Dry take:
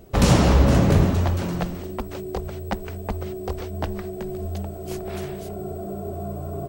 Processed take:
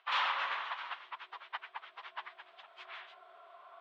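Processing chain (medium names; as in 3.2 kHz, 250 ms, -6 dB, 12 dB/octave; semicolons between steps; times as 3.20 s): Chebyshev band-pass 1–3.5 kHz, order 3; plain phase-vocoder stretch 0.57×; trim +1 dB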